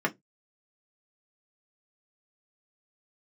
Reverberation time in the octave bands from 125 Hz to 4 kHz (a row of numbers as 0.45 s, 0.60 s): 0.25 s, 0.20 s, 0.20 s, 0.15 s, 0.10 s, 0.15 s